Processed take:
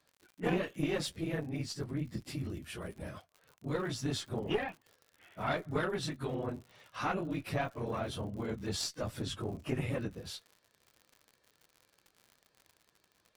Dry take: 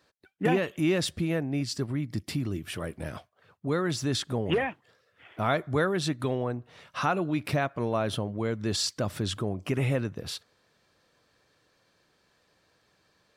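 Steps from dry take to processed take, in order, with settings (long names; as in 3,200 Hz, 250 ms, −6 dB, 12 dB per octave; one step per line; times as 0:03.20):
random phases in long frames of 50 ms
harmonic generator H 4 −17 dB, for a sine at −11 dBFS
surface crackle 86 per second −39 dBFS
level −7.5 dB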